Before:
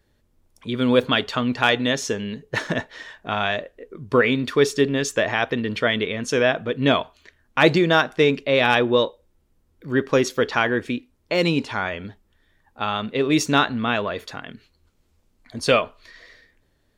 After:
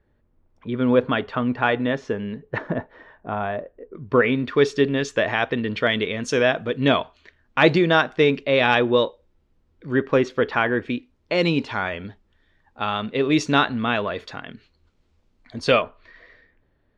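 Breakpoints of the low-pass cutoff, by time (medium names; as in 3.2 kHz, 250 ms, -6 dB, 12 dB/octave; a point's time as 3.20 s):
1.8 kHz
from 2.58 s 1.1 kHz
from 3.95 s 2.5 kHz
from 4.56 s 4.2 kHz
from 5.87 s 7.6 kHz
from 6.88 s 4.4 kHz
from 9.96 s 2.7 kHz
from 10.90 s 4.8 kHz
from 15.82 s 2.2 kHz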